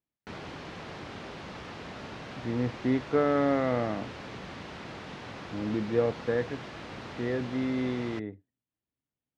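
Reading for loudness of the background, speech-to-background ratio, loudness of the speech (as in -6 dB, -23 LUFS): -42.0 LUFS, 12.0 dB, -30.0 LUFS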